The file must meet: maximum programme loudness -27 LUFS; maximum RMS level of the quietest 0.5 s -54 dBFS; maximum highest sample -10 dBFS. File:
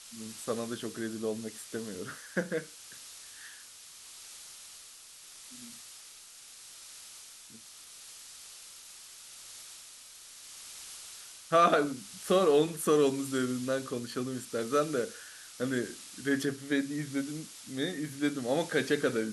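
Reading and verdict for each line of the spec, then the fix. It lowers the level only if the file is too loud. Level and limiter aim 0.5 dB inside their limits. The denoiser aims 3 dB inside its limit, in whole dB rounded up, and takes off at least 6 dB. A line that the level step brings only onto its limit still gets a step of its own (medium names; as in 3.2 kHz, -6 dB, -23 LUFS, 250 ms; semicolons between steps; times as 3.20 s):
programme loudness -31.5 LUFS: pass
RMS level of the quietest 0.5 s -52 dBFS: fail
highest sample -12.0 dBFS: pass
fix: noise reduction 6 dB, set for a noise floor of -52 dBFS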